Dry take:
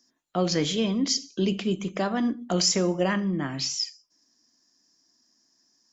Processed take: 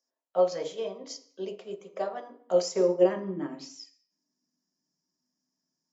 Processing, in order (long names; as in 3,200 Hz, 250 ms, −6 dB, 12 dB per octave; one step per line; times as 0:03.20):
parametric band 3,300 Hz −5.5 dB 2.3 octaves
hum removal 80.01 Hz, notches 8
high-pass filter sweep 540 Hz → 120 Hz, 0:02.32–0:05.17
on a send at −3 dB: convolution reverb RT60 0.55 s, pre-delay 3 ms
on the sum: expander for the loud parts 1.5 to 1, over −33 dBFS
level −4 dB